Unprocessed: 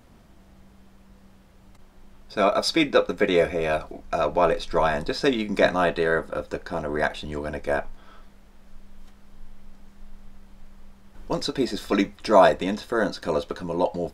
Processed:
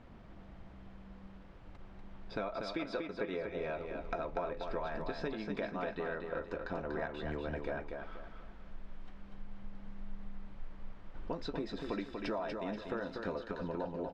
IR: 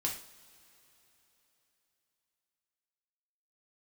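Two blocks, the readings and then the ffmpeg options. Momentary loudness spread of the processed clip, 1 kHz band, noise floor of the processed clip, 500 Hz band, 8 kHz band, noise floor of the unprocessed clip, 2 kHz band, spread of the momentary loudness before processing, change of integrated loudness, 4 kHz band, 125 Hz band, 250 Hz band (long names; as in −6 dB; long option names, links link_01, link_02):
17 LU, −17.0 dB, −53 dBFS, −16.0 dB, below −25 dB, −53 dBFS, −15.5 dB, 11 LU, −16.0 dB, −19.0 dB, −11.0 dB, −13.5 dB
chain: -filter_complex "[0:a]lowpass=2900,acompressor=threshold=-34dB:ratio=12,asplit=2[link_01][link_02];[link_02]aecho=0:1:241|482|723|964:0.562|0.202|0.0729|0.0262[link_03];[link_01][link_03]amix=inputs=2:normalize=0,volume=-1.5dB"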